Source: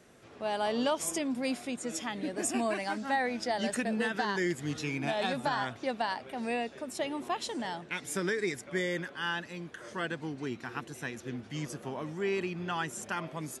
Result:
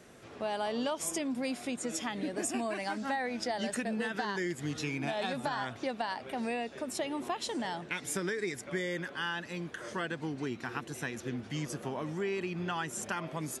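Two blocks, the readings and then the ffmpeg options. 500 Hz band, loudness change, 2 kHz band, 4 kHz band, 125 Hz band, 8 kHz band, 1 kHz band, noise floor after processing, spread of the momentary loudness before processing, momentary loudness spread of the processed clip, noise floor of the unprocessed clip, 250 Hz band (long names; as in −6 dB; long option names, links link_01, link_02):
−2.0 dB, −1.5 dB, −2.0 dB, −1.5 dB, 0.0 dB, 0.0 dB, −2.5 dB, −49 dBFS, 8 LU, 4 LU, −52 dBFS, −1.0 dB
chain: -af "acompressor=threshold=-36dB:ratio=3,volume=3.5dB"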